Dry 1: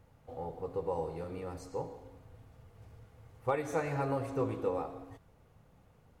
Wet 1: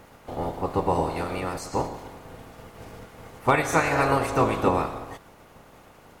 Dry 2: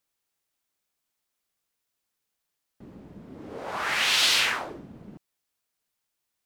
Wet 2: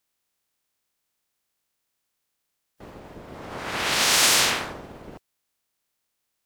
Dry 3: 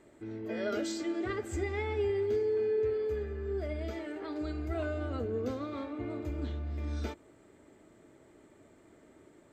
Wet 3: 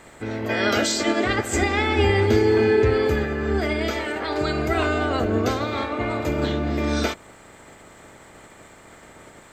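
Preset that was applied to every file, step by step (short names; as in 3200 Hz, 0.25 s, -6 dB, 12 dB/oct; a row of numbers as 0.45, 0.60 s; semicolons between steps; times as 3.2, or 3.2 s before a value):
spectral limiter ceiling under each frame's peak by 17 dB; normalise peaks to -6 dBFS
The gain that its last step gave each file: +11.5, +3.5, +12.5 dB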